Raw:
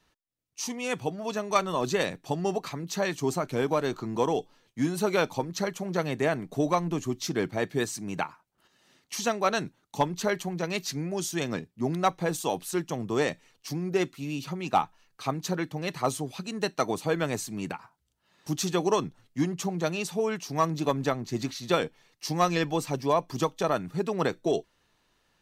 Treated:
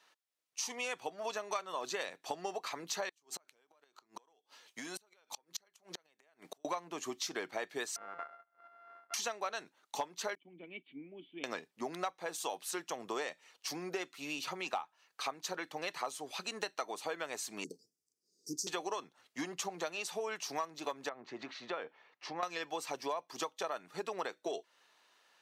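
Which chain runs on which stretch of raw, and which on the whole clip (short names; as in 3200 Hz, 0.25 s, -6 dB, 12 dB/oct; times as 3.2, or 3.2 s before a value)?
3.09–6.65 high shelf 2400 Hz +6.5 dB + compressor 10:1, threshold -34 dBFS + flipped gate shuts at -29 dBFS, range -32 dB
7.96–9.14 sample sorter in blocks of 64 samples + synth low-pass 1400 Hz, resonance Q 3.2 + compressor 2.5:1, threshold -51 dBFS
10.35–11.44 gate -40 dBFS, range -11 dB + vocal tract filter i + high shelf 2500 Hz -5.5 dB
17.64–18.67 Chebyshev band-stop 450–4900 Hz, order 5 + high shelf 10000 Hz -6.5 dB
21.09–22.43 LPF 2100 Hz + compressor 2:1, threshold -36 dBFS
whole clip: HPF 600 Hz 12 dB/oct; high shelf 11000 Hz -7 dB; compressor 6:1, threshold -39 dBFS; gain +3.5 dB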